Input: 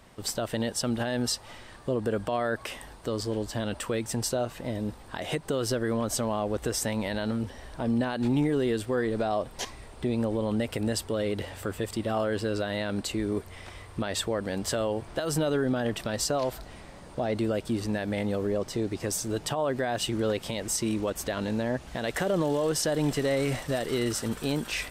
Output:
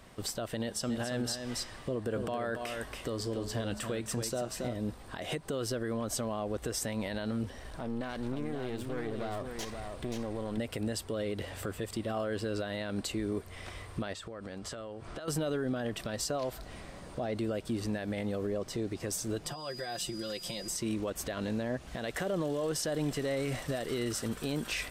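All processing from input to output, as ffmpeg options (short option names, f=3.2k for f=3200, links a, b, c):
-filter_complex "[0:a]asettb=1/sr,asplit=3[a][b][c];[a]atrim=end=0.614[d];[b]atrim=start=0.61:end=4.76,asetpts=PTS-STARTPTS,afade=t=in:d=0.004:c=qsin,afade=t=out:st=4.146:d=0.004:c=qsin,bandreject=f=213.4:t=h:w=4,bandreject=f=426.8:t=h:w=4,bandreject=f=640.2:t=h:w=4,bandreject=f=853.6:t=h:w=4,bandreject=f=1.067k:t=h:w=4,bandreject=f=1.2804k:t=h:w=4,bandreject=f=1.4938k:t=h:w=4,bandreject=f=1.7072k:t=h:w=4,bandreject=f=1.9206k:t=h:w=4,bandreject=f=2.134k:t=h:w=4,bandreject=f=2.3474k:t=h:w=4,bandreject=f=2.5608k:t=h:w=4,bandreject=f=2.7742k:t=h:w=4,bandreject=f=2.9876k:t=h:w=4,bandreject=f=3.201k:t=h:w=4,bandreject=f=3.4144k:t=h:w=4,bandreject=f=3.6278k:t=h:w=4,bandreject=f=3.8412k:t=h:w=4,bandreject=f=4.0546k:t=h:w=4,bandreject=f=4.268k:t=h:w=4,bandreject=f=4.4814k:t=h:w=4,bandreject=f=4.6948k:t=h:w=4,bandreject=f=4.9082k:t=h:w=4,bandreject=f=5.1216k:t=h:w=4,bandreject=f=5.335k:t=h:w=4,bandreject=f=5.5484k:t=h:w=4,bandreject=f=5.7618k:t=h:w=4,bandreject=f=5.9752k:t=h:w=4,bandreject=f=6.1886k:t=h:w=4,bandreject=f=6.402k:t=h:w=4,bandreject=f=6.6154k:t=h:w=4,bandreject=f=6.8288k:t=h:w=4,bandreject=f=7.0422k:t=h:w=4,bandreject=f=7.2556k:t=h:w=4,bandreject=f=7.469k:t=h:w=4,bandreject=f=7.6824k:t=h:w=4,bandreject=f=7.8958k:t=h:w=4,aecho=1:1:279:0.422,atrim=end_sample=183015[e];[c]atrim=start=4.756[f];[d][e]acrossfade=d=0.004:c1=hsin:c2=qsin[g];[g][f]acrossfade=d=0.004:c1=qsin:c2=hsin,asettb=1/sr,asplit=3[h][i][j];[h]atrim=end=7.564[k];[i]atrim=start=7.56:end=10.58,asetpts=PTS-STARTPTS,afade=t=in:d=0.004:c=qsin,afade=t=out:st=3.016:d=0.004:c=qsin,acompressor=threshold=-36dB:ratio=2:attack=3.2:release=140:knee=1:detection=peak,aeval=exprs='clip(val(0),-1,0.00794)':c=same,aecho=1:1:530:0.501,atrim=end_sample=133182[l];[j]atrim=start=10.576[m];[k][l]acrossfade=d=0.004:c1=hsin:c2=qsin[n];[n][m]acrossfade=d=0.004:c1=qsin:c2=hsin,asettb=1/sr,asplit=3[o][p][q];[o]atrim=end=14.134[r];[p]atrim=start=14.13:end=15.28,asetpts=PTS-STARTPTS,afade=t=in:d=0.004:c=qsin,afade=t=out:st=1.146:d=0.004:c=qsin,lowpass=8.6k,equalizer=f=1.3k:w=5.8:g=6.5,acompressor=threshold=-37dB:ratio=16:attack=3.2:release=140:knee=1:detection=peak[s];[q]atrim=start=15.276[t];[r][s]acrossfade=d=0.004:c1=hsin:c2=qsin[u];[u][t]acrossfade=d=0.004:c1=qsin:c2=hsin,asettb=1/sr,asplit=3[v][w][x];[v]atrim=end=19.454[y];[w]atrim=start=19.45:end=20.76,asetpts=PTS-STARTPTS,afade=t=in:d=0.004:c=qsin,afade=t=out:st=1.306:d=0.004:c=qsin,aeval=exprs='val(0)+0.00447*sin(2*PI*4900*n/s)':c=same,acrossover=split=1700|4100[z][aa][ab];[z]acompressor=threshold=-41dB:ratio=4[ac];[aa]acompressor=threshold=-51dB:ratio=4[ad];[ab]acompressor=threshold=-38dB:ratio=4[ae];[ac][ad][ae]amix=inputs=3:normalize=0,aecho=1:1:5.7:0.74,atrim=end_sample=57771[af];[x]atrim=start=20.756[ag];[y][af]acrossfade=d=0.004:c1=hsin:c2=qsin[ah];[ah][ag]acrossfade=d=0.004:c1=qsin:c2=hsin,bandreject=f=880:w=12,alimiter=level_in=0.5dB:limit=-24dB:level=0:latency=1:release=275,volume=-0.5dB"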